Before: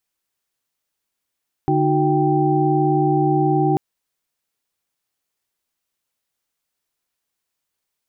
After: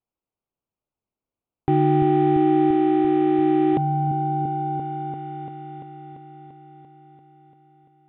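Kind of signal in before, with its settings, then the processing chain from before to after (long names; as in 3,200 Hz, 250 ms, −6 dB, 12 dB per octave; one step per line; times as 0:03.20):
held notes D3/D#4/F#4/G5 sine, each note −20 dBFS 2.09 s
adaptive Wiener filter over 25 samples
echo whose low-pass opens from repeat to repeat 342 ms, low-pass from 200 Hz, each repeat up 1 octave, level −3 dB
downsampling to 8,000 Hz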